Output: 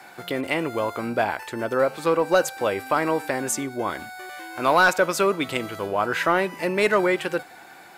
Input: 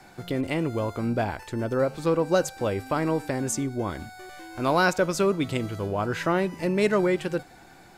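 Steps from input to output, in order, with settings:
high-pass filter 950 Hz 6 dB per octave
sine wavefolder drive 6 dB, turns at −7.5 dBFS
parametric band 6,000 Hz −7.5 dB 1.5 octaves

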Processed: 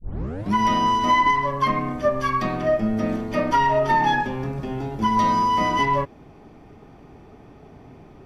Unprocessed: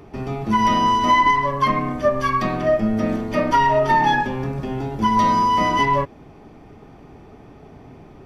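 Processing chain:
turntable start at the beginning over 0.54 s
level −2.5 dB

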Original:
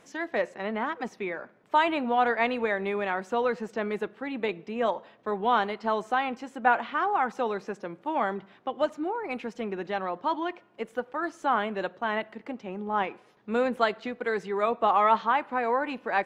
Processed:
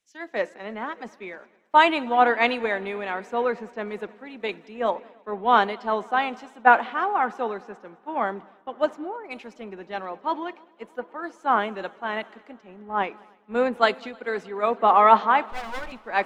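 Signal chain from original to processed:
0:15.49–0:15.92: lower of the sound and its delayed copy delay 5.4 ms
parametric band 130 Hz −13 dB 0.41 octaves
echo machine with several playback heads 105 ms, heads second and third, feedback 73%, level −21.5 dB
multiband upward and downward expander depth 100%
level +2 dB

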